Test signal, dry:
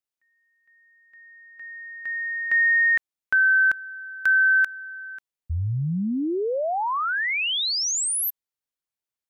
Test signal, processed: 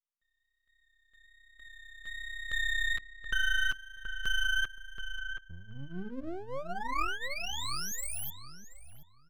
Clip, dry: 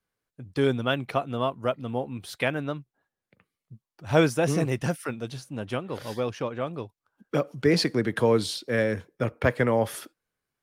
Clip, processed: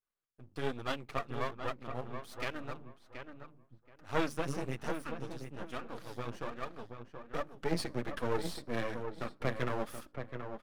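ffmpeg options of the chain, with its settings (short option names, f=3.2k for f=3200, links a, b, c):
-filter_complex "[0:a]equalizer=f=1.2k:t=o:w=0.32:g=9,bandreject=f=50:t=h:w=6,bandreject=f=100:t=h:w=6,bandreject=f=150:t=h:w=6,bandreject=f=200:t=h:w=6,bandreject=f=250:t=h:w=6,bandreject=f=300:t=h:w=6,flanger=delay=2:depth=7.3:regen=0:speed=1.2:shape=triangular,aeval=exprs='max(val(0),0)':c=same,asplit=2[a][b];[b]adelay=727,lowpass=f=2k:p=1,volume=-7dB,asplit=2[c][d];[d]adelay=727,lowpass=f=2k:p=1,volume=0.21,asplit=2[e][f];[f]adelay=727,lowpass=f=2k:p=1,volume=0.21[g];[c][e][g]amix=inputs=3:normalize=0[h];[a][h]amix=inputs=2:normalize=0,volume=-6dB"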